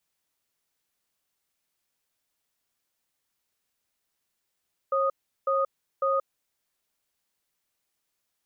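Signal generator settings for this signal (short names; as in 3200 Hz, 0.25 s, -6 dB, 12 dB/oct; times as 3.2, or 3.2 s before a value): cadence 543 Hz, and 1240 Hz, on 0.18 s, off 0.37 s, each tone -24.5 dBFS 1.61 s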